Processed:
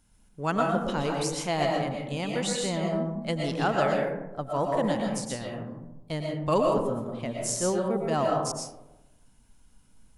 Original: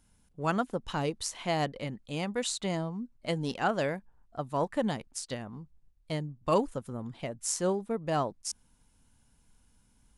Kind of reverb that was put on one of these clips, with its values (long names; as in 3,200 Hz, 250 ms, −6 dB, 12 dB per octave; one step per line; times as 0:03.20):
comb and all-pass reverb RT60 1 s, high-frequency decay 0.35×, pre-delay 80 ms, DRR −0.5 dB
level +1 dB